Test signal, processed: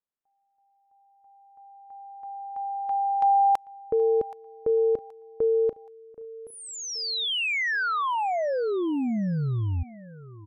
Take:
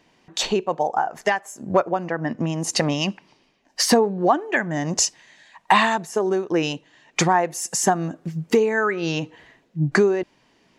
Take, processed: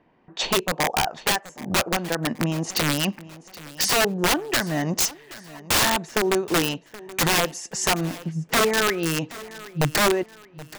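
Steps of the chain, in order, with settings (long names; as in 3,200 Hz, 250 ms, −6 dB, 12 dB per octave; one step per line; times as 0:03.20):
low-pass that shuts in the quiet parts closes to 1,500 Hz, open at −16.5 dBFS
wrap-around overflow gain 14 dB
repeating echo 775 ms, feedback 38%, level −18.5 dB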